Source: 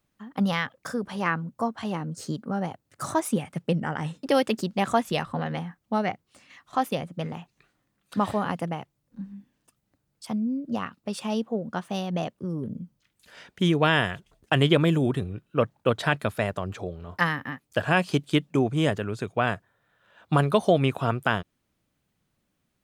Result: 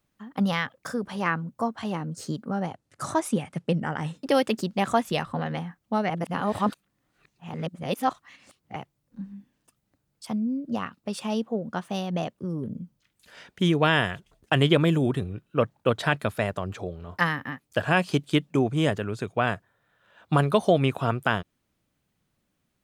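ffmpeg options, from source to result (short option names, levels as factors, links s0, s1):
-filter_complex "[0:a]asettb=1/sr,asplit=3[s0][s1][s2];[s0]atrim=end=2.544[s3];[s1]atrim=start=2.54:end=3.8,asetpts=PTS-STARTPTS,afade=t=in:d=0.004:c=qsin,afade=t=out:st=1.256:d=0.004:c=qsin,lowpass=11000[s4];[s2]atrim=start=3.796[s5];[s3][s4]acrossfade=d=0.004:c1=hsin:c2=qsin[s6];[s6][s5]acrossfade=d=0.004:c1=qsin:c2=hsin,asplit=3[s7][s8][s9];[s7]atrim=end=6.102[s10];[s8]atrim=start=6.098:end=8.762,asetpts=PTS-STARTPTS,areverse[s11];[s9]atrim=start=8.758[s12];[s10][s11]acrossfade=d=0.004:c1=hsin:c2=hsin[s13];[s13][s12]acrossfade=d=0.004:c1=hsin:c2=hsin"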